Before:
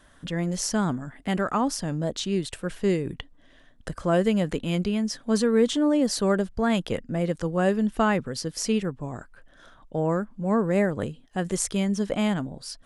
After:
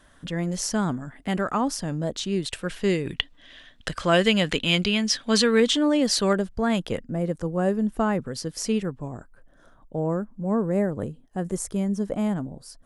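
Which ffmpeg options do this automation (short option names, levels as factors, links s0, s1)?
-af "asetnsamples=n=441:p=0,asendcmd='2.46 equalizer g 6.5;3.06 equalizer g 15;5.6 equalizer g 8.5;6.33 equalizer g -0.5;7.05 equalizer g -9;8.25 equalizer g -2;9.08 equalizer g -12.5',equalizer=f=3200:t=o:w=2.3:g=0"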